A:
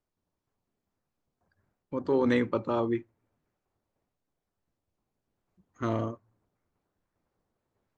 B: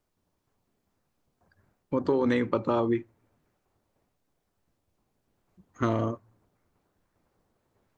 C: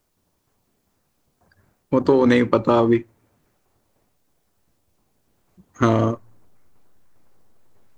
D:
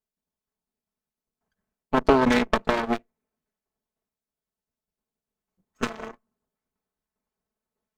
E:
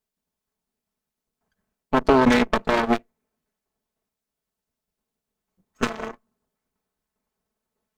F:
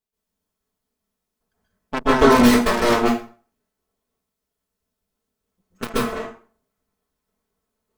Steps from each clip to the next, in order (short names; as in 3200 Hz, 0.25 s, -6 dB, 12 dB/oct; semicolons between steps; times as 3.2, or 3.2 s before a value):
compressor 6:1, threshold -29 dBFS, peak gain reduction 8.5 dB; gain +7.5 dB
high shelf 4600 Hz +6.5 dB; in parallel at -8 dB: backlash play -29.5 dBFS; on the sum: gain +6.5 dB
minimum comb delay 4.6 ms; added harmonics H 3 -29 dB, 4 -18 dB, 7 -19 dB, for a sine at -4 dBFS; gain -1 dB
limiter -10.5 dBFS, peak gain reduction 5.5 dB; gain +5 dB
tracing distortion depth 0.3 ms; reverb RT60 0.40 s, pre-delay 0.122 s, DRR -8 dB; gain -5 dB